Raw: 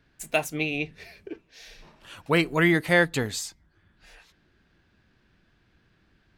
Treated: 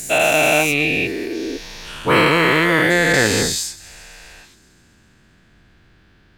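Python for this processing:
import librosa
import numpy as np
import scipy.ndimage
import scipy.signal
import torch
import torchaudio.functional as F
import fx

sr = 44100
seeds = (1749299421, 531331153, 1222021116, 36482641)

y = fx.spec_dilate(x, sr, span_ms=480)
y = fx.rider(y, sr, range_db=4, speed_s=0.5)
y = fx.sample_gate(y, sr, floor_db=-38.0, at=(2.38, 2.97))
y = fx.echo_wet_highpass(y, sr, ms=133, feedback_pct=74, hz=4200.0, wet_db=-19.5)
y = y * librosa.db_to_amplitude(2.0)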